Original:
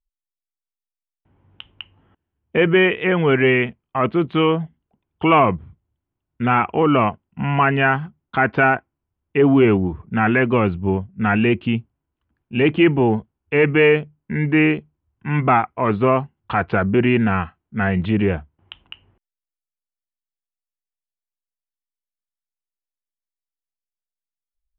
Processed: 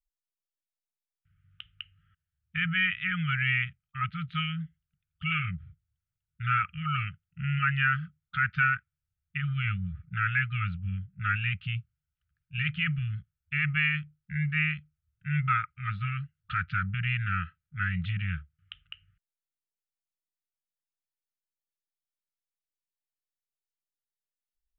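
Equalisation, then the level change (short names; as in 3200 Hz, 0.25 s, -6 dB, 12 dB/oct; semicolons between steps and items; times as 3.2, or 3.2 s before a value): brick-wall FIR band-stop 180–1200 Hz; -6.5 dB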